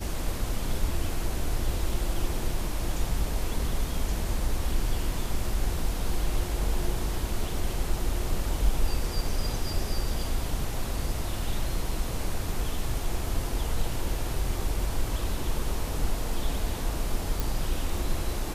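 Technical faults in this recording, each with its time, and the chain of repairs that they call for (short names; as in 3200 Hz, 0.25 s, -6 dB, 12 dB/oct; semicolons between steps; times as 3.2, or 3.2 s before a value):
17.4 pop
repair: de-click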